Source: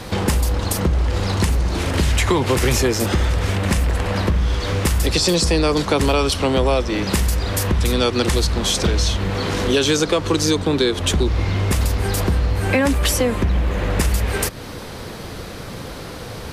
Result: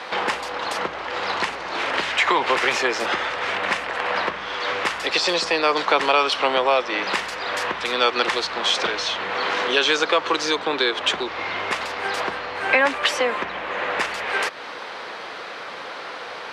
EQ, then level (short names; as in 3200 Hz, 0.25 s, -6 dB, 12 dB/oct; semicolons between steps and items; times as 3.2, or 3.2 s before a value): BPF 790–2900 Hz; +6.0 dB